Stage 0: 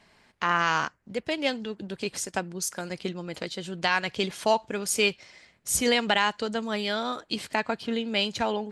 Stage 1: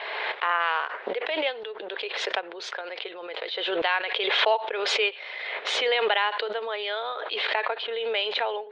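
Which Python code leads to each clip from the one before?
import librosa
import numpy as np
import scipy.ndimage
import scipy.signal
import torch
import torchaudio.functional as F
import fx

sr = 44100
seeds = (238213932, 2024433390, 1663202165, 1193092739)

y = scipy.signal.sosfilt(scipy.signal.cheby1(4, 1.0, [430.0, 3700.0], 'bandpass', fs=sr, output='sos'), x)
y = fx.pre_swell(y, sr, db_per_s=25.0)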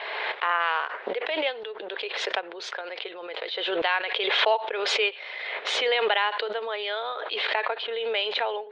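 y = x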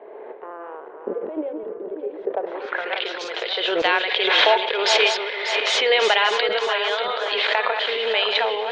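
y = fx.reverse_delay_fb(x, sr, ms=295, feedback_pct=64, wet_db=-6.0)
y = fx.filter_sweep_lowpass(y, sr, from_hz=350.0, to_hz=7300.0, start_s=2.22, end_s=3.26, q=1.5)
y = y * 10.0 ** (4.5 / 20.0)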